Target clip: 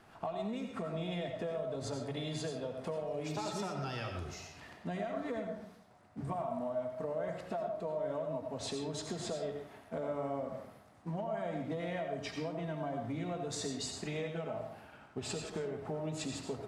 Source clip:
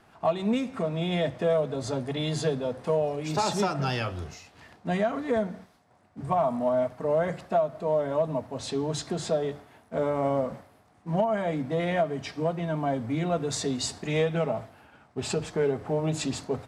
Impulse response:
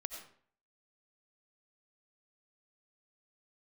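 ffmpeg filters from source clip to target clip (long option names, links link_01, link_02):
-filter_complex "[0:a]acompressor=threshold=-35dB:ratio=6[link_01];[1:a]atrim=start_sample=2205[link_02];[link_01][link_02]afir=irnorm=-1:irlink=0,volume=1dB"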